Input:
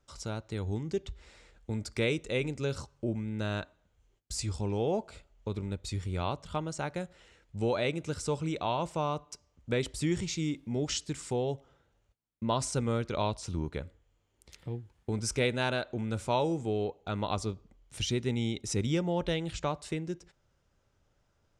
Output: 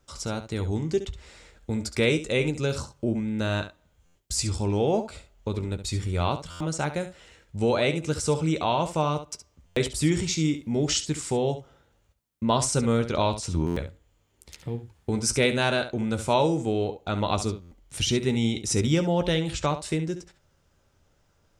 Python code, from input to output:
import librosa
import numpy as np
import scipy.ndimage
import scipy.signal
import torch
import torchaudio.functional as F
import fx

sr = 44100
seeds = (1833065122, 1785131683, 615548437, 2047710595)

p1 = fx.high_shelf(x, sr, hz=7000.0, db=5.0)
p2 = p1 + fx.room_early_taps(p1, sr, ms=(13, 69), db=(-11.5, -11.5), dry=0)
p3 = fx.buffer_glitch(p2, sr, at_s=(4.05, 6.5, 9.66, 13.66, 17.61), block=512, repeats=8)
y = p3 * 10.0 ** (6.0 / 20.0)